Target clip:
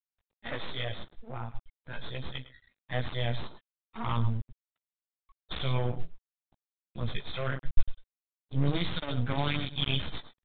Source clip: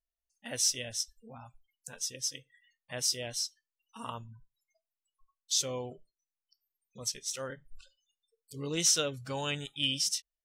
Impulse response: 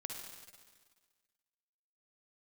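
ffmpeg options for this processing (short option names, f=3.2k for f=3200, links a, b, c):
-filter_complex "[0:a]asplit=2[a][b];[b]aecho=0:1:107:0.2[c];[a][c]amix=inputs=2:normalize=0,aeval=exprs='0.141*(cos(1*acos(clip(val(0)/0.141,-1,1)))-cos(1*PI/2))+0.00316*(cos(2*acos(clip(val(0)/0.141,-1,1)))-cos(2*PI/2))+0.00158*(cos(6*acos(clip(val(0)/0.141,-1,1)))-cos(6*PI/2))':c=same,asuperstop=centerf=2800:order=20:qfactor=5.6,highshelf=f=3.1k:g=5.5,dynaudnorm=f=110:g=3:m=13.5dB,flanger=delay=15.5:depth=3.3:speed=0.91,aresample=11025,aeval=exprs='clip(val(0),-1,0.0708)':c=same,aresample=44100,asubboost=boost=10:cutoff=110,aeval=exprs='max(val(0),0)':c=same" -ar 8000 -c:a pcm_mulaw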